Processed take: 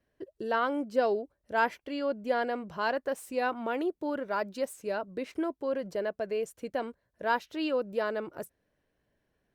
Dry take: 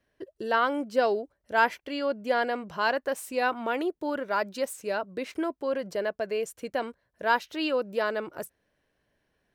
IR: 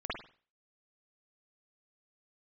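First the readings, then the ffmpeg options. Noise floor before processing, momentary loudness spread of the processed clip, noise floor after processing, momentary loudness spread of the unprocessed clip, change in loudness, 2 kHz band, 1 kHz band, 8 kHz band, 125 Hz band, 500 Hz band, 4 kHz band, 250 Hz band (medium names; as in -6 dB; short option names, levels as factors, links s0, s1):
-76 dBFS, 7 LU, -79 dBFS, 8 LU, -3.0 dB, -5.5 dB, -4.0 dB, -6.5 dB, no reading, -2.5 dB, -6.0 dB, -1.0 dB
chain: -af "tiltshelf=f=820:g=3,volume=0.668" -ar 48000 -c:a libopus -b:a 64k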